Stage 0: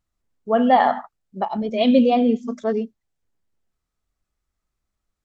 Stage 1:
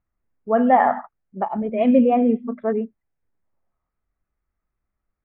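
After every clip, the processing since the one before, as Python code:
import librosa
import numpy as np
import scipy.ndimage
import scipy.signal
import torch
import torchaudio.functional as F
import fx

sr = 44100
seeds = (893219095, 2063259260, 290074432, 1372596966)

y = fx.spec_box(x, sr, start_s=3.44, length_s=0.45, low_hz=500.0, high_hz=1300.0, gain_db=7)
y = scipy.signal.sosfilt(scipy.signal.butter(6, 2300.0, 'lowpass', fs=sr, output='sos'), y)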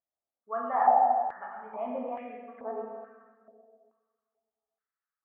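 y = fx.rev_plate(x, sr, seeds[0], rt60_s=1.9, hf_ratio=0.65, predelay_ms=0, drr_db=-2.5)
y = fx.filter_held_bandpass(y, sr, hz=2.3, low_hz=650.0, high_hz=1800.0)
y = y * librosa.db_to_amplitude(-5.0)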